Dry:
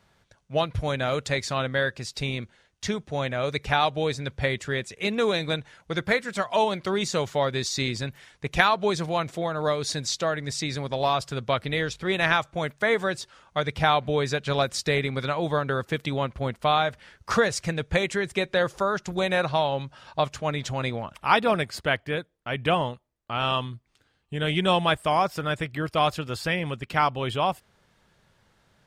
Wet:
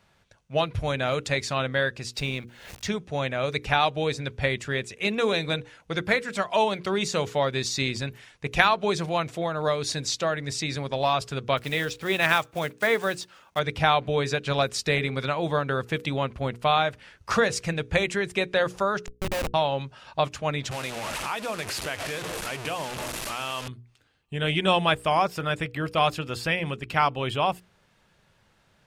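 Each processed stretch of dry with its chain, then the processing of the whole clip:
2.17–2.87 G.711 law mismatch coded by A + backwards sustainer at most 69 dB/s
11.57–13.6 block floating point 5-bit + HPF 120 Hz 6 dB/oct
19.06–19.54 auto swell 0.129 s + Schmitt trigger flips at -24.5 dBFS
20.71–23.68 delta modulation 64 kbps, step -24.5 dBFS + low shelf 150 Hz -10.5 dB + compressor 3:1, threshold -29 dBFS
whole clip: bell 2600 Hz +4 dB 0.28 oct; notches 60/120/180/240/300/360/420/480 Hz

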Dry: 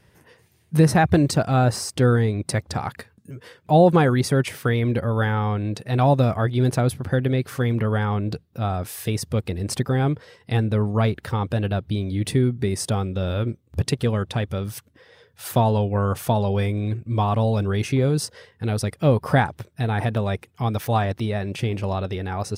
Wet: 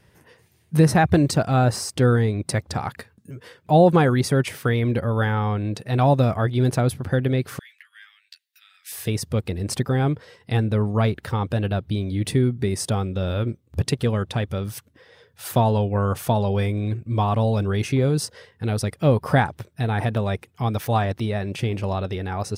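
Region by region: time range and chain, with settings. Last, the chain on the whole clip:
7.59–8.92 compressor 8:1, threshold -30 dBFS + elliptic high-pass 1800 Hz, stop band 70 dB + doubler 12 ms -4 dB
whole clip: dry

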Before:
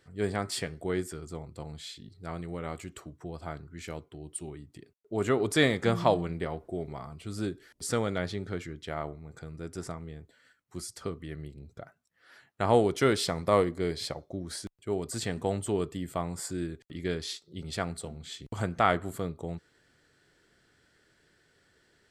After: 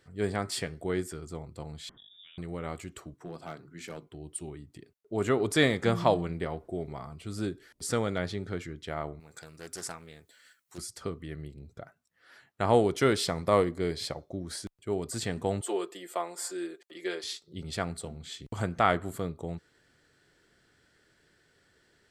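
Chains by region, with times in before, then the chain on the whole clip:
1.89–2.38 compressor 10:1, threshold -50 dBFS + inverted band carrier 3600 Hz
3.14–4.07 HPF 140 Hz 24 dB/oct + notches 50/100/150/200/250/300/350 Hz + hard clip -33 dBFS
9.2–10.78 tilt +3.5 dB/oct + Doppler distortion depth 0.35 ms
15.61–17.24 HPF 360 Hz 24 dB/oct + comb 5.7 ms, depth 74%
whole clip: dry

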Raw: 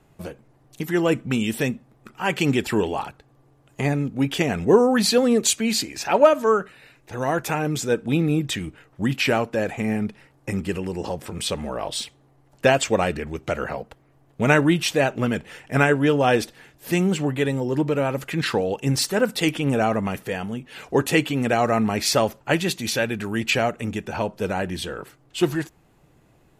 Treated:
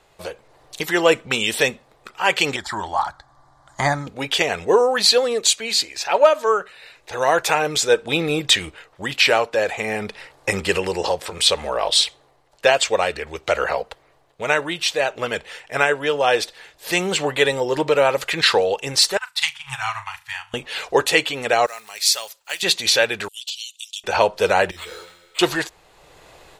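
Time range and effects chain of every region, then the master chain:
2.56–4.07 air absorption 56 m + fixed phaser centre 1100 Hz, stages 4
19.17–20.54 Chebyshev band-stop 130–880 Hz, order 4 + flutter echo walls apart 6.4 m, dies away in 0.32 s + upward expander 2.5:1, over -39 dBFS
21.66–22.63 block floating point 7-bit + pre-emphasis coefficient 0.97
23.28–24.04 steep high-pass 3000 Hz 72 dB/oct + compressor 12:1, threshold -37 dBFS + overloaded stage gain 33.5 dB
24.71–25.39 resonator 87 Hz, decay 1.5 s, mix 80% + careless resampling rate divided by 8×, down none, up hold + ensemble effect
whole clip: graphic EQ 125/250/500/1000/2000/4000/8000 Hz -8/-11/+7/+5/+4/+11/+5 dB; AGC; gain -1 dB

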